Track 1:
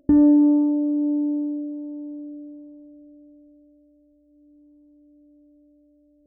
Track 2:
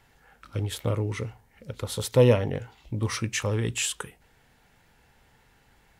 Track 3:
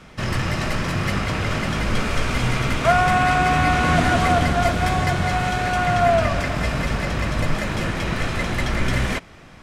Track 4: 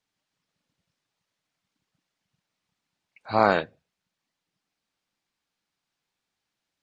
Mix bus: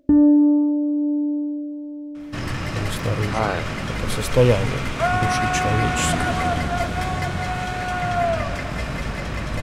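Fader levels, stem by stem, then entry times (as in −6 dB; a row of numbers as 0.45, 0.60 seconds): +1.0, +2.5, −4.0, −3.5 decibels; 0.00, 2.20, 2.15, 0.00 seconds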